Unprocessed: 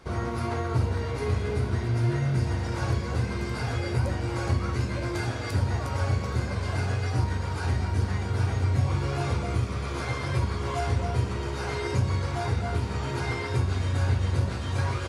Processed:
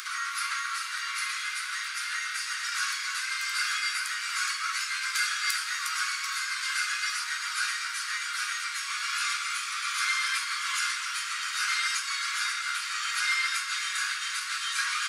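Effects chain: steep high-pass 1.2 kHz 72 dB/octave; treble shelf 5.1 kHz +7.5 dB; upward compressor, threshold -40 dBFS; on a send: reverberation RT60 4.9 s, pre-delay 78 ms, DRR 10 dB; on the sum: trim +8 dB

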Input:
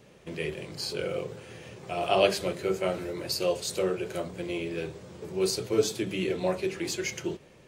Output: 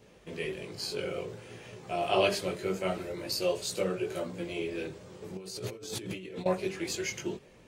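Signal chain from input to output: chorus voices 6, 0.48 Hz, delay 19 ms, depth 2.6 ms; 5.37–6.46 s: compressor with a negative ratio -42 dBFS, ratio -1; trim +1 dB

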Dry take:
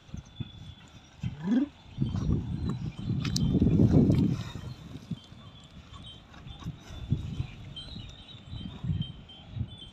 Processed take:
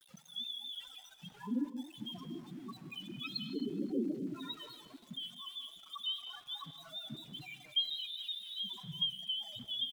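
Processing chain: high-pass 540 Hz 12 dB/octave; in parallel at -2 dB: compression, threshold -49 dBFS, peak gain reduction 21.5 dB; on the sum: loudest bins only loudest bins 4; small samples zeroed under -59.5 dBFS; vibrato 4.9 Hz 58 cents; dynamic bell 3.1 kHz, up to +6 dB, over -60 dBFS, Q 1.8; on a send: frequency-shifting echo 264 ms, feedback 36%, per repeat +30 Hz, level -19.5 dB; on the sum: gated-style reverb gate 250 ms rising, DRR 9.5 dB; trim +3.5 dB

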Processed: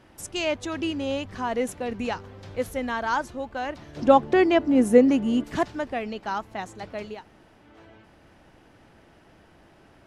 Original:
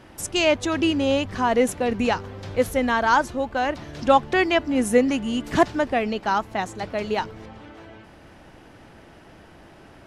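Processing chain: 3.96–5.44 s: peaking EQ 330 Hz +10.5 dB 2.9 oct; 7.14–7.66 s: room tone, crossfade 0.24 s; trim -7 dB

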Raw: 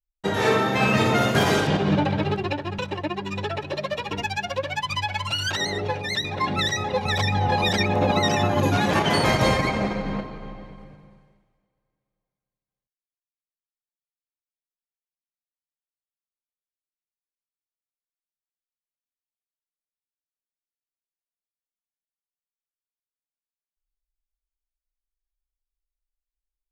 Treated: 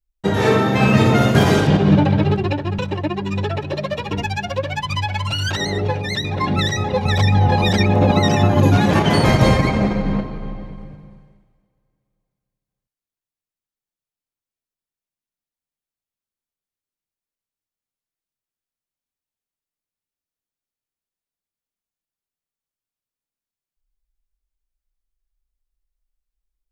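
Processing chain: bass shelf 340 Hz +9.5 dB; trim +1.5 dB

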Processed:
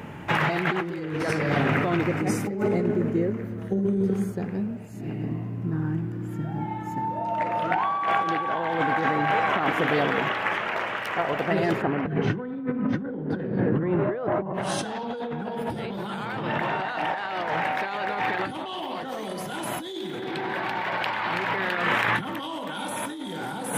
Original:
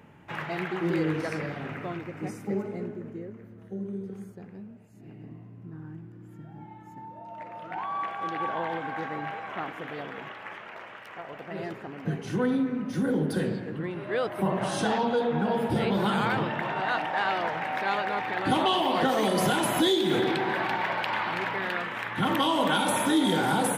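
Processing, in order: 11.81–14.53 s: low-pass 2.4 kHz -> 1.1 kHz 12 dB/octave; compressor with a negative ratio -36 dBFS, ratio -1; trim +8.5 dB

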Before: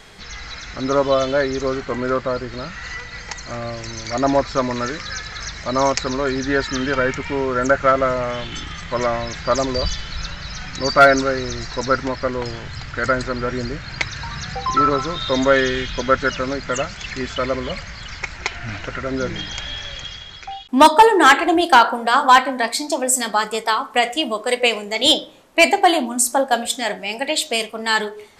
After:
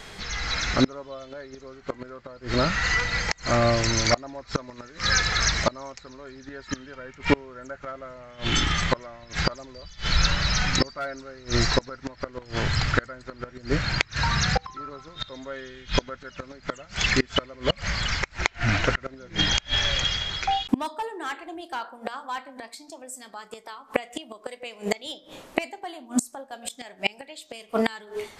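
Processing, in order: inverted gate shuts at -15 dBFS, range -29 dB; level rider gain up to 6 dB; trim +1.5 dB

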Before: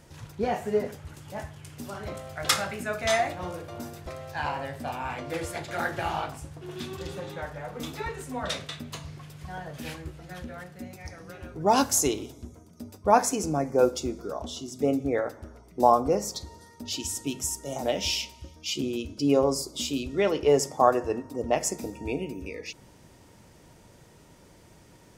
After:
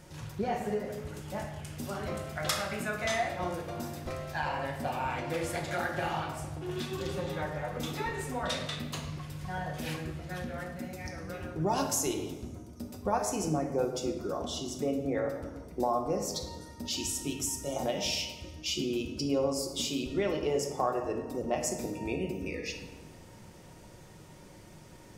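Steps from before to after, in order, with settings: compression 2.5:1, threshold -32 dBFS, peak gain reduction 12.5 dB; simulated room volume 610 m³, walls mixed, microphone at 0.97 m

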